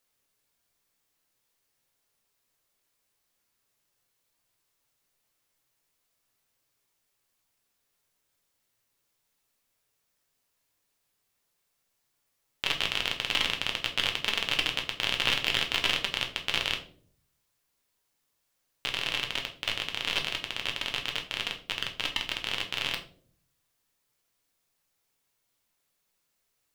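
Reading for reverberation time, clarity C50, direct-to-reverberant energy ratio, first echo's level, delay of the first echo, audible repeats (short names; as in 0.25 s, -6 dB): 0.55 s, 11.0 dB, 2.0 dB, none, none, none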